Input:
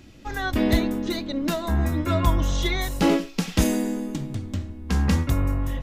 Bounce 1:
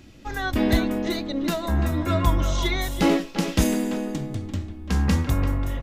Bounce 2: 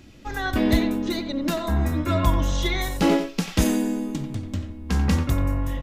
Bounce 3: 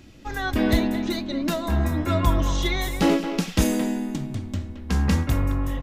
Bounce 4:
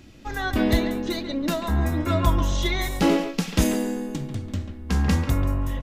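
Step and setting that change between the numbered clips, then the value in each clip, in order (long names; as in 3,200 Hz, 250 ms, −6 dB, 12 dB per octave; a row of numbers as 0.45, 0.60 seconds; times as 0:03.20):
far-end echo of a speakerphone, delay time: 340, 90, 220, 140 milliseconds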